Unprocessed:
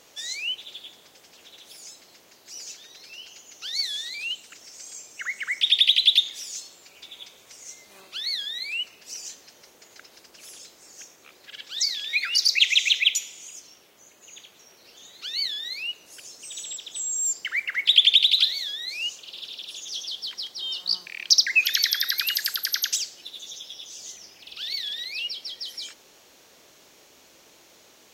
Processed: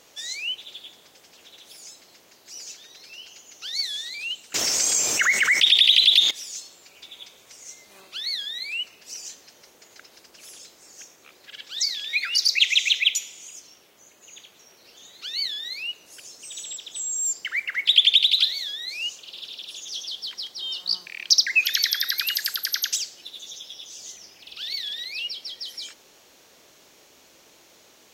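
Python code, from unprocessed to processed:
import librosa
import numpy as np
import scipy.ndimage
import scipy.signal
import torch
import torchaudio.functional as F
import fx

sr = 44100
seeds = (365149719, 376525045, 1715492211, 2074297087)

y = fx.env_flatten(x, sr, amount_pct=70, at=(4.54, 6.31))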